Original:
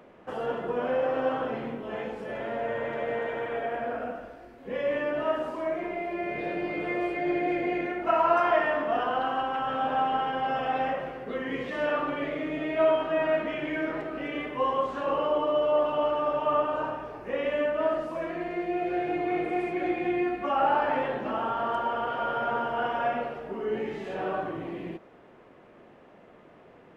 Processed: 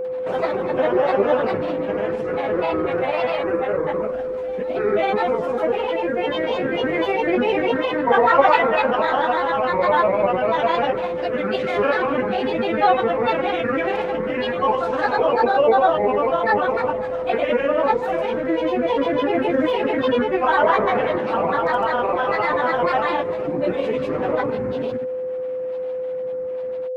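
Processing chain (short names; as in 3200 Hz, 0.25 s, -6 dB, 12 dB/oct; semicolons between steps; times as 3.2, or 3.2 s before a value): grains, pitch spread up and down by 7 st; whine 510 Hz -33 dBFS; reverse echo 0.545 s -21.5 dB; gain +9 dB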